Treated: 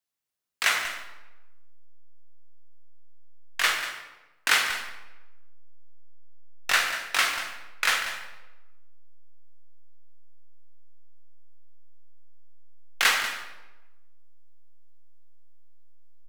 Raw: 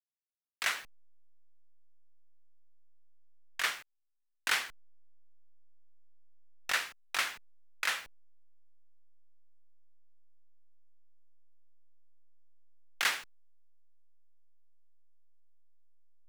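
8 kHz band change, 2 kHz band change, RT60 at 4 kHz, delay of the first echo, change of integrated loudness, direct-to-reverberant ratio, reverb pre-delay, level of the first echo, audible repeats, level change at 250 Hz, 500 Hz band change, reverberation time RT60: +9.0 dB, +9.5 dB, 0.75 s, 190 ms, +8.5 dB, 2.5 dB, 9 ms, -11.5 dB, 1, +9.5 dB, +10.0 dB, 1.0 s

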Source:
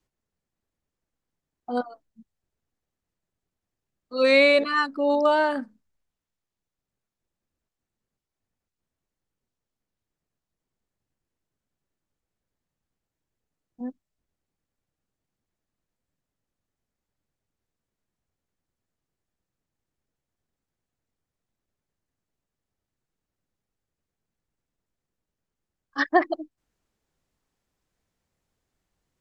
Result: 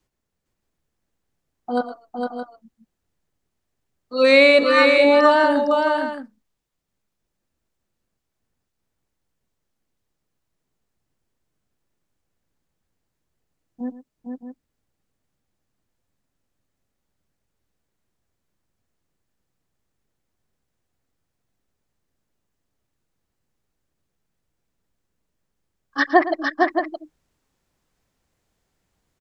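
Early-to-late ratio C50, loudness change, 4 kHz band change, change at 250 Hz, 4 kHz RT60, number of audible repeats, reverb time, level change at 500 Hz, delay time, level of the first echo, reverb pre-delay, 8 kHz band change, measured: no reverb, +5.0 dB, +6.5 dB, +6.5 dB, no reverb, 3, no reverb, +6.5 dB, 113 ms, -14.5 dB, no reverb, no reading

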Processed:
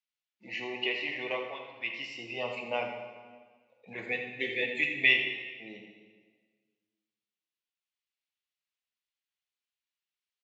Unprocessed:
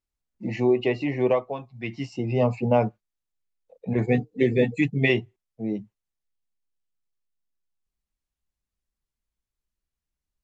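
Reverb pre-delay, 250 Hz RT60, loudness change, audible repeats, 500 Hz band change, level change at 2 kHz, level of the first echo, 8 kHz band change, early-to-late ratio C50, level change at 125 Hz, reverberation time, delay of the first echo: 13 ms, 1.7 s, -6.0 dB, 1, -13.5 dB, +3.0 dB, -9.5 dB, no reading, 4.0 dB, -26.0 dB, 1.5 s, 82 ms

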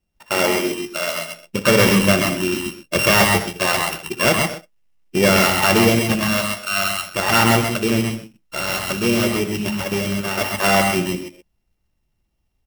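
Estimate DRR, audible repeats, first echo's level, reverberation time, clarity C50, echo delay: no reverb, 4, -14.5 dB, no reverb, no reverb, 61 ms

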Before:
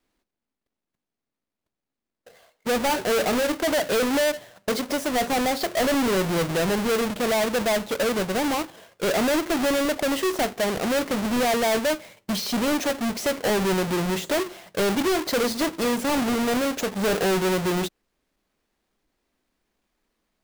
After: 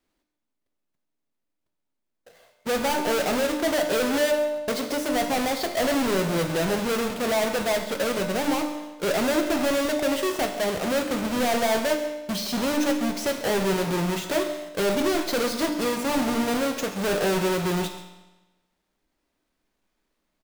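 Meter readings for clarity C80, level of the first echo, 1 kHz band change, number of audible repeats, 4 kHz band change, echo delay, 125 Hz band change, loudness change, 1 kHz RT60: 9.0 dB, -16.0 dB, -1.0 dB, 1, -1.0 dB, 137 ms, -1.0 dB, -1.0 dB, 1.1 s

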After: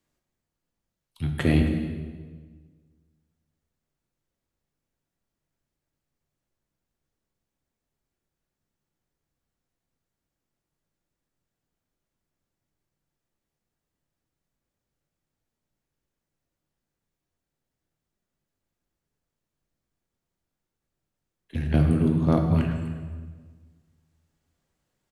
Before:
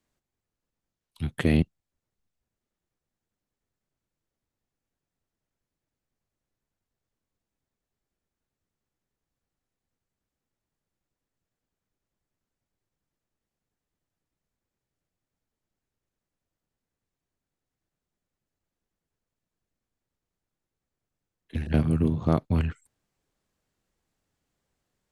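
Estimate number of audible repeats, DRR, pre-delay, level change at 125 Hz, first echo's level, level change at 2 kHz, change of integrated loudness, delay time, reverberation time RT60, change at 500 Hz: 1, 3.0 dB, 3 ms, +3.0 dB, -16.5 dB, +2.0 dB, +2.0 dB, 267 ms, 1.5 s, +2.0 dB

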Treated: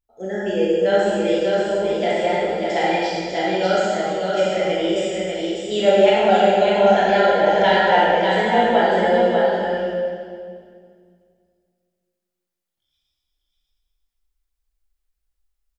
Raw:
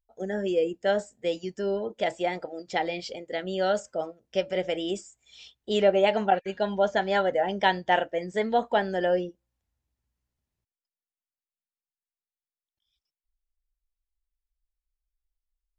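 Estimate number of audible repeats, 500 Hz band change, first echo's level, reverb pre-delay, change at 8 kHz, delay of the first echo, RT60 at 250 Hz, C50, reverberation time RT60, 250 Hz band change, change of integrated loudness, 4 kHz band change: 1, +9.5 dB, -4.5 dB, 16 ms, no reading, 594 ms, 2.4 s, -5.0 dB, 2.1 s, +9.5 dB, +9.0 dB, +9.0 dB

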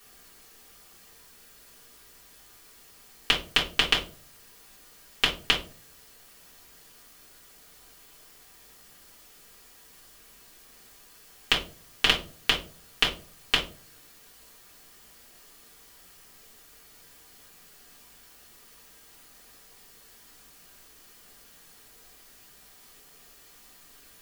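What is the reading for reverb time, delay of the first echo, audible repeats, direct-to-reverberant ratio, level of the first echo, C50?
0.40 s, no echo, no echo, -6.5 dB, no echo, 9.5 dB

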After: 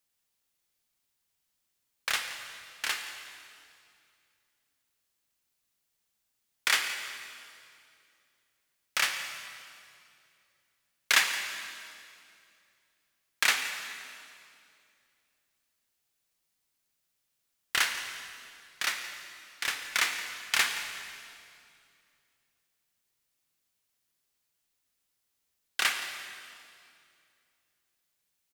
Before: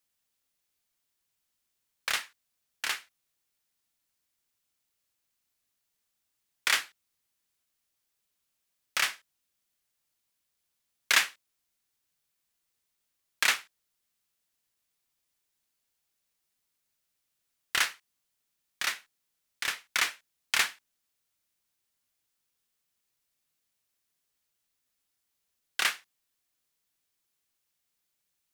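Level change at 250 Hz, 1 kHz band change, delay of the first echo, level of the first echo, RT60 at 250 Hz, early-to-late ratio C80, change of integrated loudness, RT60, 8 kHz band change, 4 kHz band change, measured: +1.5 dB, +1.0 dB, 171 ms, -16.0 dB, 2.9 s, 7.0 dB, -1.0 dB, 2.5 s, +1.0 dB, +1.0 dB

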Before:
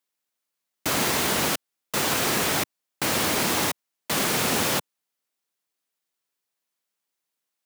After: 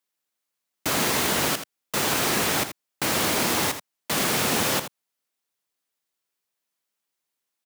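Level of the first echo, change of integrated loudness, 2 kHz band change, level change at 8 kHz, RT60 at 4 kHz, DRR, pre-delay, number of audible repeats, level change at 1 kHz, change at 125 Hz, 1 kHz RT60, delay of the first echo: -10.5 dB, +0.5 dB, +0.5 dB, +0.5 dB, no reverb, no reverb, no reverb, 1, +0.5 dB, +0.5 dB, no reverb, 81 ms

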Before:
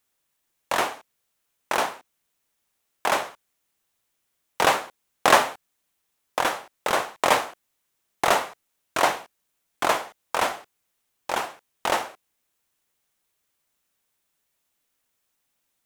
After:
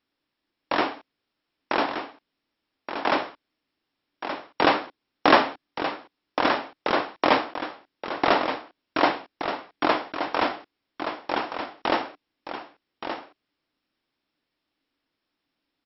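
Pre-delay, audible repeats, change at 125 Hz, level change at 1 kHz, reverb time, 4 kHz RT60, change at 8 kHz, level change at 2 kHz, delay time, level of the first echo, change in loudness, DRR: no reverb, 1, +1.0 dB, 0.0 dB, no reverb, no reverb, under -30 dB, -0.5 dB, 1174 ms, -8.5 dB, -1.0 dB, no reverb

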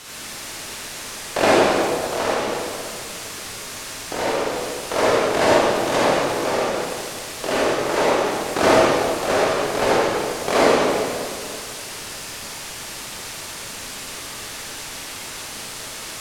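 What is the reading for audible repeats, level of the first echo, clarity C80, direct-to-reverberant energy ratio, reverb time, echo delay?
no echo, no echo, -3.0 dB, -8.5 dB, 2.2 s, no echo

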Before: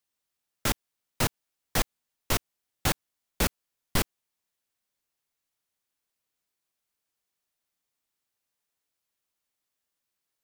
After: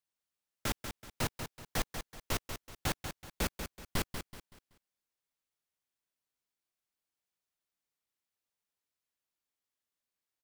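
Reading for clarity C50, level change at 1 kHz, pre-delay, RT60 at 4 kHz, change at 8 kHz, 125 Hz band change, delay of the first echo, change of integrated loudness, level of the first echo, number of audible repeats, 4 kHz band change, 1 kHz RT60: no reverb, -6.5 dB, no reverb, no reverb, -8.0 dB, -6.5 dB, 189 ms, -8.0 dB, -8.0 dB, 3, -7.0 dB, no reverb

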